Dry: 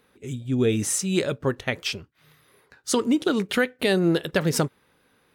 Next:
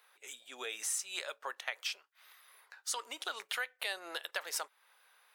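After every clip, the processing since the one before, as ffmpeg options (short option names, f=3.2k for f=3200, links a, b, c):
-af "highpass=f=740:w=0.5412,highpass=f=740:w=1.3066,highshelf=f=12k:g=4.5,acompressor=threshold=-40dB:ratio=2,volume=-1dB"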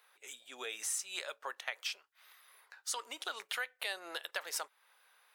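-af "equalizer=f=83:t=o:w=1.4:g=5.5,volume=-1dB"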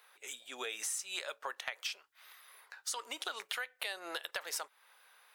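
-af "acompressor=threshold=-40dB:ratio=3,volume=4dB"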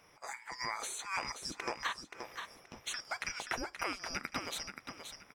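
-filter_complex "[0:a]afftfilt=real='real(if(lt(b,272),68*(eq(floor(b/68),0)*1+eq(floor(b/68),1)*2+eq(floor(b/68),2)*3+eq(floor(b/68),3)*0)+mod(b,68),b),0)':imag='imag(if(lt(b,272),68*(eq(floor(b/68),0)*1+eq(floor(b/68),1)*2+eq(floor(b/68),2)*3+eq(floor(b/68),3)*0)+mod(b,68),b),0)':win_size=2048:overlap=0.75,asplit=2[a][b];[b]highpass=f=720:p=1,volume=9dB,asoftclip=type=tanh:threshold=-18.5dB[c];[a][c]amix=inputs=2:normalize=0,lowpass=f=1.9k:p=1,volume=-6dB,aecho=1:1:527|1054|1581:0.422|0.114|0.0307,volume=2dB"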